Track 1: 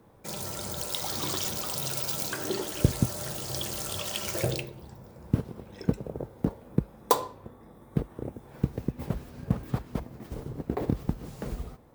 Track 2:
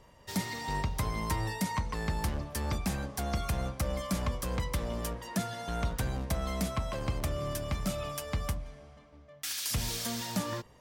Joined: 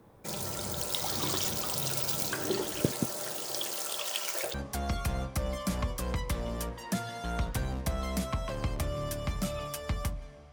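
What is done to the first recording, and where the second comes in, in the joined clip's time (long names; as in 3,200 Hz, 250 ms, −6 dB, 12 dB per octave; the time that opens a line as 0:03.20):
track 1
0:02.81–0:04.54: high-pass filter 210 Hz → 760 Hz
0:04.54: continue with track 2 from 0:02.98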